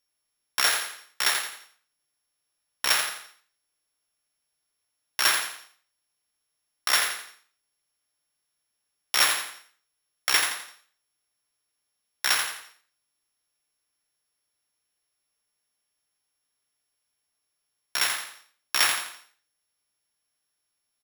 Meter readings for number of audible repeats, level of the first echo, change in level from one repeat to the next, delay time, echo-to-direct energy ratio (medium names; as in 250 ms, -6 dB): 4, -6.0 dB, -8.5 dB, 85 ms, -5.5 dB